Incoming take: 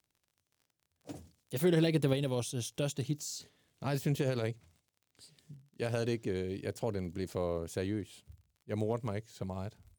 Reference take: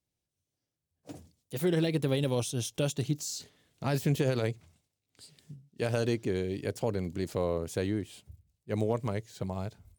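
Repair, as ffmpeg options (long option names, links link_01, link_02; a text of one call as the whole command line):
ffmpeg -i in.wav -af "adeclick=threshold=4,asetnsamples=nb_out_samples=441:pad=0,asendcmd='2.13 volume volume 4dB',volume=0dB" out.wav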